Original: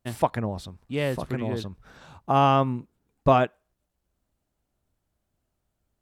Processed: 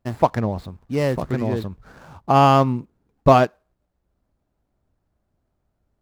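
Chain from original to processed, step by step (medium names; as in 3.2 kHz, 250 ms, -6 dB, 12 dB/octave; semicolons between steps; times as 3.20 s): median filter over 15 samples; trim +6 dB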